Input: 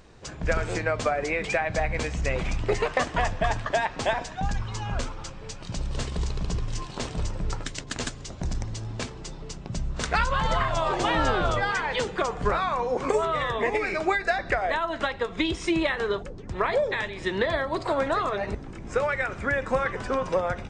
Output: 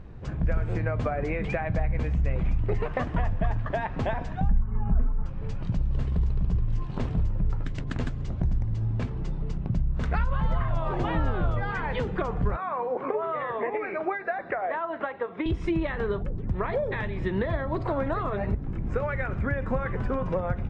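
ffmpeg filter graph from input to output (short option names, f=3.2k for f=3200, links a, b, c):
-filter_complex "[0:a]asettb=1/sr,asplit=3[a][b][c];[a]atrim=end=4.494[d];[b]atrim=start=4.49:end=5.26,asetpts=PTS-STARTPTS,afade=t=in:d=0.004:c=qsin,afade=t=out:st=0.766:d=0.004:c=qsin,lowpass=f=1.9k:w=0.5412,lowpass=f=1.9k:w=1.3066,lowshelf=f=260:g=7,aecho=1:1:4.6:0.65,atrim=end_sample=33957[e];[c]atrim=start=5.256[f];[d][e]acrossfade=d=0.004:c1=hsin:c2=qsin[g];[g][f]acrossfade=d=0.004:c1=qsin:c2=hsin,asettb=1/sr,asplit=3[h][i][j];[h]atrim=end=12.564[k];[i]atrim=start=12.56:end=15.46,asetpts=PTS-STARTPTS,afade=t=in:d=0.004:c=qsin,afade=t=out:st=2.896:d=0.004:c=qsin,acrossover=split=3200[l][m];[m]acompressor=threshold=-52dB:ratio=4:attack=1:release=60[n];[l][n]amix=inputs=2:normalize=0,highpass=430,lowpass=7.3k,aemphasis=mode=reproduction:type=75fm[o];[j]atrim=start=15.456[p];[k][o]acrossfade=d=0.004:c1=hsin:c2=qsin[q];[q][p]acrossfade=d=0.004:c1=qsin:c2=hsin,bass=f=250:g=12,treble=f=4k:g=-11,acompressor=threshold=-25dB:ratio=2.5,highshelf=f=3.2k:g=-10"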